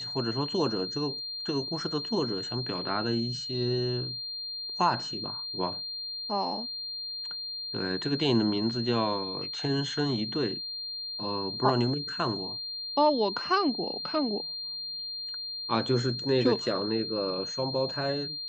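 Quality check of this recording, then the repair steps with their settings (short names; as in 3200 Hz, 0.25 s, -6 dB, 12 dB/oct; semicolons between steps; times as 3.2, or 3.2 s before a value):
tone 4200 Hz -34 dBFS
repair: notch 4200 Hz, Q 30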